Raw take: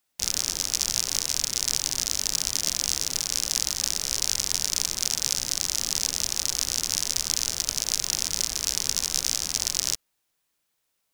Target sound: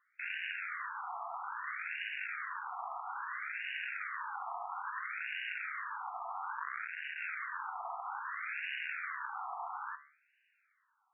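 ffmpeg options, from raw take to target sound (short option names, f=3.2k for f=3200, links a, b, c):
-filter_complex "[0:a]aeval=exprs='(tanh(5.01*val(0)+0.15)-tanh(0.15))/5.01':c=same,alimiter=limit=-18dB:level=0:latency=1,asettb=1/sr,asplit=3[a][b][c];[a]atrim=end=6.574[d];[b]atrim=start=6.57:end=7.2,asetpts=PTS-STARTPTS,afade=t=in:d=0.004:c=qsin,afade=t=out:st=0.626:d=0.004:c=qsin,aeval=exprs='max(val(0),0)':c=same[e];[c]atrim=start=7.196[f];[d][e]acrossfade=d=0.004:c1=hsin:c2=qsin[g];[g][f]acrossfade=d=0.004:c1=qsin:c2=hsin,bandreject=f=72.66:t=h:w=4,bandreject=f=145.32:t=h:w=4,bandreject=f=217.98:t=h:w=4,bandreject=f=290.64:t=h:w=4,bandreject=f=363.3:t=h:w=4,bandreject=f=435.96:t=h:w=4,bandreject=f=508.62:t=h:w=4,bandreject=f=581.28:t=h:w=4,bandreject=f=653.94:t=h:w=4,bandreject=f=726.6:t=h:w=4,bandreject=f=799.26:t=h:w=4,bandreject=f=871.92:t=h:w=4,bandreject=f=944.58:t=h:w=4,bandreject=f=1.01724k:t=h:w=4,bandreject=f=1.0899k:t=h:w=4,bandreject=f=1.16256k:t=h:w=4,bandreject=f=1.23522k:t=h:w=4,bandreject=f=1.30788k:t=h:w=4,bandreject=f=1.38054k:t=h:w=4,bandreject=f=1.4532k:t=h:w=4,bandreject=f=1.52586k:t=h:w=4,bandreject=f=1.59852k:t=h:w=4,bandreject=f=1.67118k:t=h:w=4,bandreject=f=1.74384k:t=h:w=4,bandreject=f=1.8165k:t=h:w=4,bandreject=f=1.88916k:t=h:w=4,bandreject=f=1.96182k:t=h:w=4,bandreject=f=2.03448k:t=h:w=4,bandreject=f=2.10714k:t=h:w=4,bandreject=f=2.1798k:t=h:w=4,bandreject=f=2.25246k:t=h:w=4,bandreject=f=2.32512k:t=h:w=4,bandreject=f=2.39778k:t=h:w=4,bandreject=f=2.47044k:t=h:w=4,bandreject=f=2.5431k:t=h:w=4,afftfilt=real='re*between(b*sr/1024,940*pow(2100/940,0.5+0.5*sin(2*PI*0.6*pts/sr))/1.41,940*pow(2100/940,0.5+0.5*sin(2*PI*0.6*pts/sr))*1.41)':imag='im*between(b*sr/1024,940*pow(2100/940,0.5+0.5*sin(2*PI*0.6*pts/sr))/1.41,940*pow(2100/940,0.5+0.5*sin(2*PI*0.6*pts/sr))*1.41)':win_size=1024:overlap=0.75,volume=13.5dB"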